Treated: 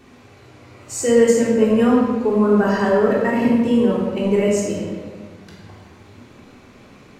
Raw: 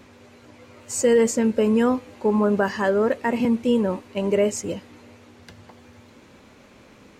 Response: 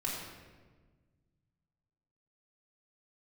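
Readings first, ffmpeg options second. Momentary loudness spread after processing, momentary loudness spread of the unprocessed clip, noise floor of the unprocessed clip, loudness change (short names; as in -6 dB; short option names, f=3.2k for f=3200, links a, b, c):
11 LU, 9 LU, -51 dBFS, +4.5 dB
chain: -filter_complex "[1:a]atrim=start_sample=2205[a];[0:a][a]afir=irnorm=-1:irlink=0"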